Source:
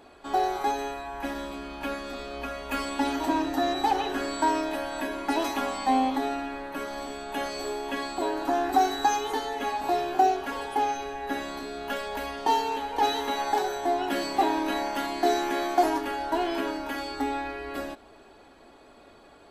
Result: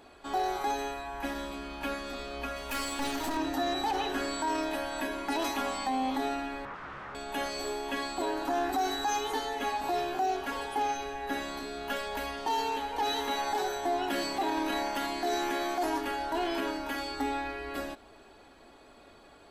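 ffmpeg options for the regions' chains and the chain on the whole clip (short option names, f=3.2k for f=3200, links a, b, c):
-filter_complex "[0:a]asettb=1/sr,asplit=3[a][b][c];[a]atrim=end=2.564[d];[b]atrim=start=2.56:end=3.37,asetpts=PTS-STARTPTS,afade=t=in:d=0.004:c=qsin,afade=t=out:st=0.806:d=0.004:c=qsin,aeval=exprs='clip(val(0),-1,0.02)':c=same,highshelf=f=5.4k:g=7.5[e];[c]atrim=start=3.366[f];[d][e]acrossfade=d=0.004:c1=hsin:c2=qsin[g];[g][f]acrossfade=d=0.004:c1=qsin:c2=hsin,asettb=1/sr,asplit=3[h][i][j];[h]atrim=end=6.654[k];[i]atrim=start=6.65:end=7.15,asetpts=PTS-STARTPTS,afade=t=in:d=0.004:c=qsin,afade=t=out:st=0.496:d=0.004:c=qsin,aeval=exprs='(mod(53.1*val(0)+1,2)-1)/53.1':c=same,lowpass=f=1.3k:t=q:w=2.3[l];[j]atrim=start=7.146[m];[k][l]acrossfade=d=0.004:c1=hsin:c2=qsin[n];[n][m]acrossfade=d=0.004:c1=qsin:c2=hsin,equalizer=f=440:w=0.34:g=-3,alimiter=limit=-22dB:level=0:latency=1:release=17"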